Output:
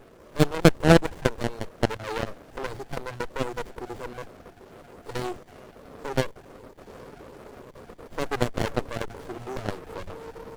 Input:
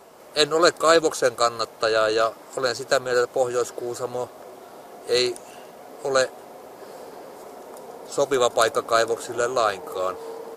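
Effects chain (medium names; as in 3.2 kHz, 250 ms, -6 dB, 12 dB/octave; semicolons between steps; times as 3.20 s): random holes in the spectrogram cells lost 28%; Chebyshev shaper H 2 -7 dB, 5 -31 dB, 8 -15 dB, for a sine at -3.5 dBFS; sliding maximum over 33 samples; trim -1 dB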